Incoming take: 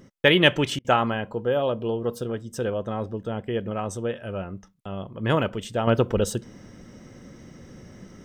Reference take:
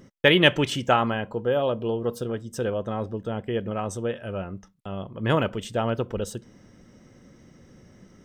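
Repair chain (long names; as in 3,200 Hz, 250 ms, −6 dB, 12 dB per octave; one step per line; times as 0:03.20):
repair the gap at 0:00.79, 55 ms
level 0 dB, from 0:05.87 −6.5 dB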